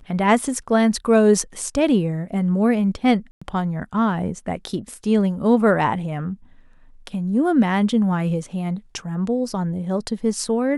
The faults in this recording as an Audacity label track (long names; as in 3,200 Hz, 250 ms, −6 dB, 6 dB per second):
3.310000	3.420000	drop-out 105 ms